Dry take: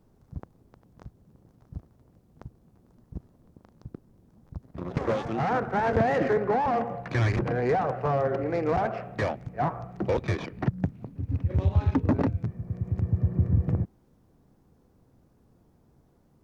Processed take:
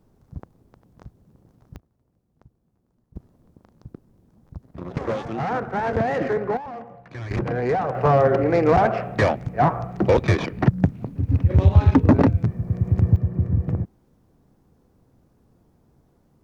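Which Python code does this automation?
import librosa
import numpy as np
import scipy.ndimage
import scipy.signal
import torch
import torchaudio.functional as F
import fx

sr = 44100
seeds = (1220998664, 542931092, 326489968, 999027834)

y = fx.gain(x, sr, db=fx.steps((0.0, 2.0), (1.76, -10.0), (3.16, 1.0), (6.57, -9.5), (7.31, 2.5), (7.95, 9.0), (13.16, 2.0)))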